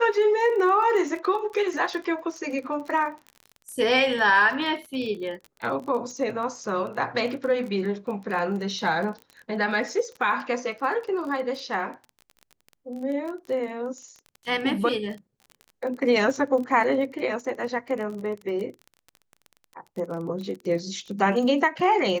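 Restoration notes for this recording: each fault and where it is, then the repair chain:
crackle 27 per s -33 dBFS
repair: de-click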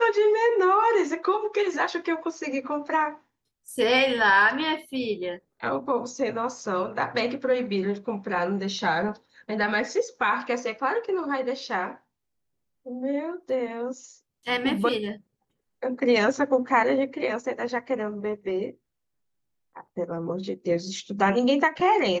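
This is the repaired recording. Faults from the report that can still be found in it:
nothing left

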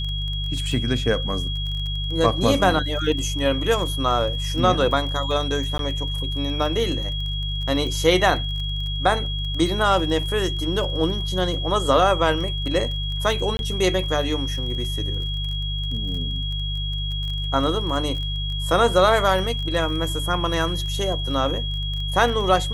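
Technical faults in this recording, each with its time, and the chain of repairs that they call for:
crackle 21 per s -29 dBFS
hum 50 Hz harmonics 3 -27 dBFS
whine 3.3 kHz -29 dBFS
5.78–5.79 s: dropout 12 ms
13.57–13.59 s: dropout 21 ms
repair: de-click; band-stop 3.3 kHz, Q 30; de-hum 50 Hz, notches 3; interpolate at 5.78 s, 12 ms; interpolate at 13.57 s, 21 ms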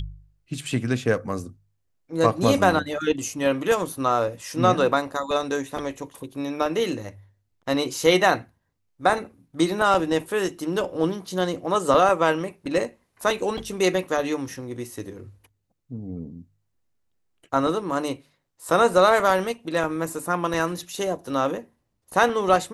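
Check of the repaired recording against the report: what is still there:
nothing left

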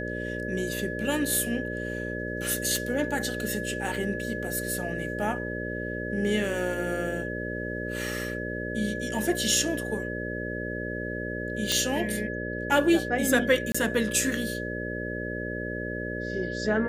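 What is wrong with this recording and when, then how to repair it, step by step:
buzz 60 Hz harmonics 10 -34 dBFS
whine 1.7 kHz -35 dBFS
2.76 s: pop
11.72 s: pop
13.72–13.74 s: dropout 25 ms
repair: de-click; band-stop 1.7 kHz, Q 30; de-hum 60 Hz, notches 10; interpolate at 13.72 s, 25 ms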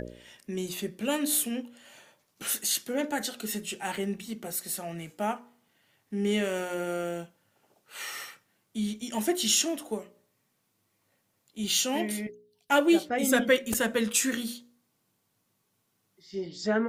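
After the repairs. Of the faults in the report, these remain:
nothing left

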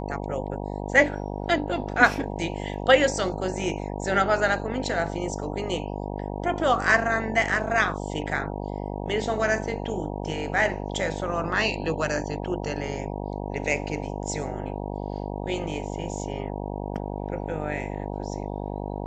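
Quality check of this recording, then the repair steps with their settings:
buzz 50 Hz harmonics 19 -32 dBFS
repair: de-hum 50 Hz, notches 19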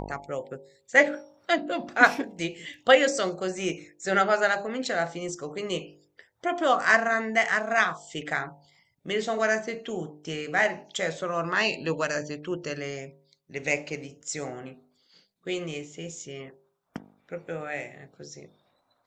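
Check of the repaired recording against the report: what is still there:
nothing left

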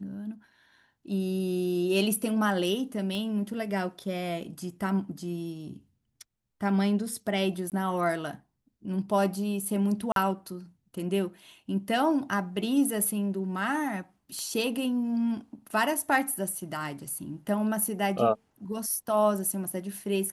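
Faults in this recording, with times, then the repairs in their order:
3.15 s: pop -24 dBFS
7.70–7.72 s: dropout 18 ms
10.12–10.16 s: dropout 42 ms
14.39 s: pop -25 dBFS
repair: de-click; interpolate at 7.70 s, 18 ms; interpolate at 10.12 s, 42 ms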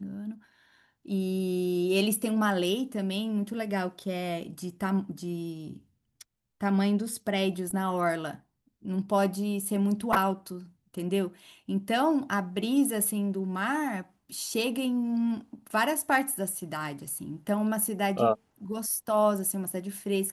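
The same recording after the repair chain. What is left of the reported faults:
3.15 s: pop

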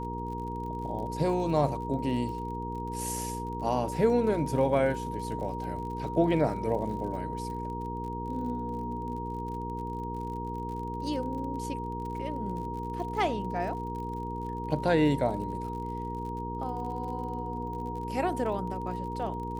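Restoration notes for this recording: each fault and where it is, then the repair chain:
crackle 45 per s -39 dBFS
hum 60 Hz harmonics 8 -37 dBFS
whine 940 Hz -36 dBFS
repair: de-click; de-hum 60 Hz, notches 8; band-stop 940 Hz, Q 30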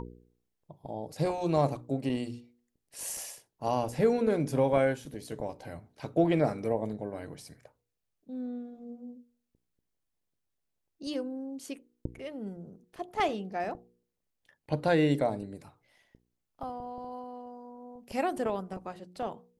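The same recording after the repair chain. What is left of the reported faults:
nothing left

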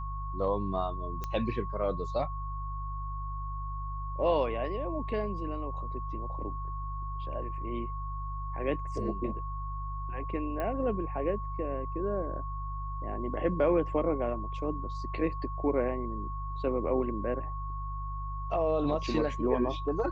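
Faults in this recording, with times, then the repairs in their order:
hum 50 Hz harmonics 3 -37 dBFS
whine 1.1 kHz -39 dBFS
1.24 s: pop -21 dBFS
10.60 s: pop -22 dBFS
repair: de-click; band-stop 1.1 kHz, Q 30; de-hum 50 Hz, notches 3

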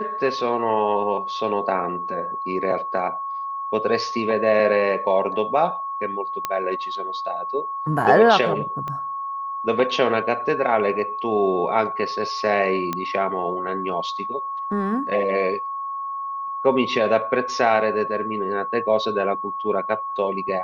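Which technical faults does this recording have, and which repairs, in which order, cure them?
whine 1.1 kHz -26 dBFS
6.45 s: pop -9 dBFS
8.88 s: pop -18 dBFS
12.93 s: pop -11 dBFS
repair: de-click; band-stop 1.1 kHz, Q 30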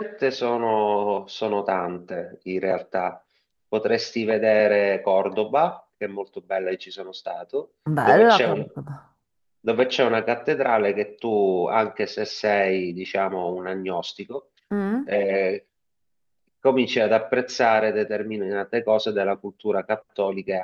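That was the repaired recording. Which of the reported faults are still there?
8.88 s: pop

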